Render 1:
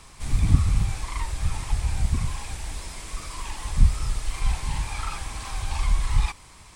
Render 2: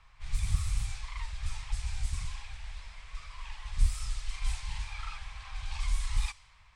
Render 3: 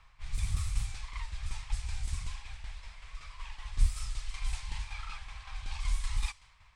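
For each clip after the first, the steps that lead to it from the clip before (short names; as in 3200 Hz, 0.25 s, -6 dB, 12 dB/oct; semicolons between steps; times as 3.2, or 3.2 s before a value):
low-pass opened by the level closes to 1900 Hz, open at -14.5 dBFS; passive tone stack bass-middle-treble 10-0-10; gain -2.5 dB
tremolo saw down 5.3 Hz, depth 50%; gain +1 dB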